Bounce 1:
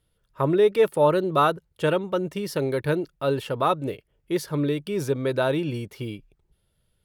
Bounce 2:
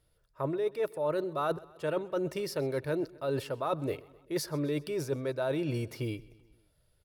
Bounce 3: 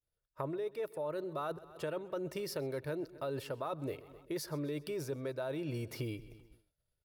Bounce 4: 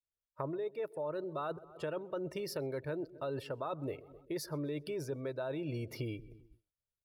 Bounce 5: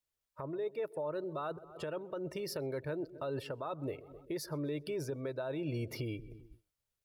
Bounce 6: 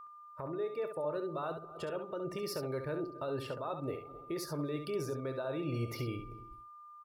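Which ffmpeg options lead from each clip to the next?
-af "equalizer=f=200:t=o:w=0.33:g=-10,equalizer=f=630:t=o:w=0.33:g=5,equalizer=f=3.15k:t=o:w=0.33:g=-6,equalizer=f=5k:t=o:w=0.33:g=4,areverse,acompressor=threshold=-29dB:ratio=6,areverse,aecho=1:1:129|258|387|516:0.0794|0.0461|0.0267|0.0155"
-af "agate=range=-33dB:threshold=-57dB:ratio=3:detection=peak,acompressor=threshold=-40dB:ratio=4,equalizer=f=15k:w=2:g=7,volume=3dB"
-af "afftdn=nr=14:nf=-55"
-af "alimiter=level_in=11dB:limit=-24dB:level=0:latency=1:release=479,volume=-11dB,volume=5.5dB"
-filter_complex "[0:a]aeval=exprs='val(0)+0.00398*sin(2*PI*1200*n/s)':c=same,asplit=2[a][b];[b]aecho=0:1:24|68:0.178|0.422[c];[a][c]amix=inputs=2:normalize=0"

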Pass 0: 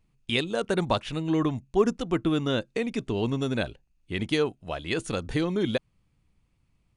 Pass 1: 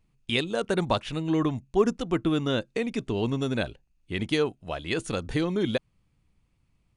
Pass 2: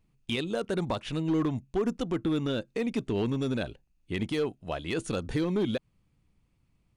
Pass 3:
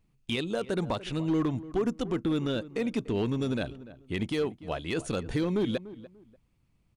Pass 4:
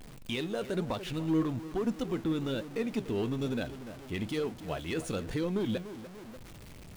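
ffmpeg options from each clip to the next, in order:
-af anull
-af "equalizer=f=260:t=o:w=2.6:g=3,alimiter=limit=-16dB:level=0:latency=1:release=102,volume=19.5dB,asoftclip=hard,volume=-19.5dB,volume=-2dB"
-filter_complex "[0:a]asplit=2[a][b];[b]adelay=293,lowpass=f=1.5k:p=1,volume=-16dB,asplit=2[c][d];[d]adelay=293,lowpass=f=1.5k:p=1,volume=0.25[e];[a][c][e]amix=inputs=3:normalize=0"
-af "aeval=exprs='val(0)+0.5*0.0126*sgn(val(0))':c=same,flanger=delay=3.9:depth=8.7:regen=77:speed=1.1:shape=sinusoidal"

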